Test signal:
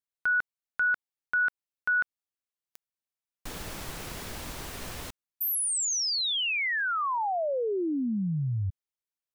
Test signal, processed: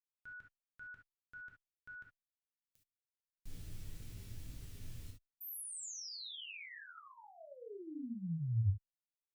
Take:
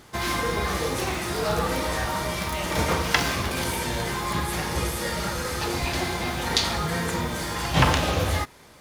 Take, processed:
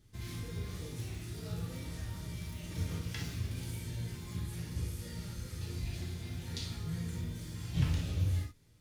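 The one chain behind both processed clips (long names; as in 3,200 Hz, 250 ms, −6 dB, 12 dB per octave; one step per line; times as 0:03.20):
guitar amp tone stack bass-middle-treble 10-0-1
reverb whose tail is shaped and stops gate 90 ms flat, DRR −0.5 dB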